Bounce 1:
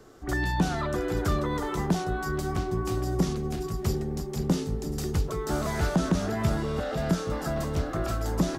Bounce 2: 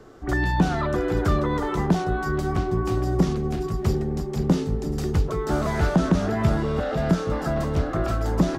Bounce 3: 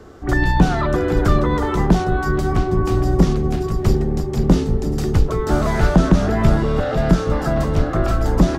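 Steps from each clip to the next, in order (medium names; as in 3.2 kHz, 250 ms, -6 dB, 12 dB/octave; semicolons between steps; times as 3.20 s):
treble shelf 4.8 kHz -11 dB; trim +5 dB
octave divider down 2 oct, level -2 dB; trim +5 dB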